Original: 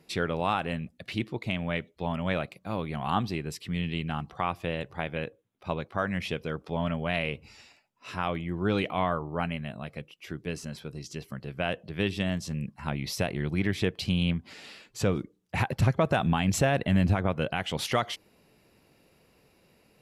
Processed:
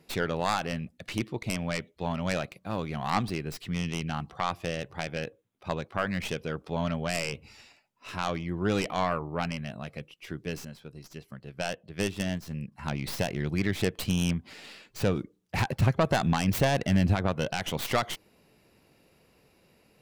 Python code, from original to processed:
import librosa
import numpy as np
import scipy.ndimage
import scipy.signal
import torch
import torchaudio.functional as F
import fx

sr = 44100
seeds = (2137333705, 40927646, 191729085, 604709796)

y = fx.tracing_dist(x, sr, depth_ms=0.25)
y = fx.upward_expand(y, sr, threshold_db=-41.0, expansion=1.5, at=(10.65, 12.72))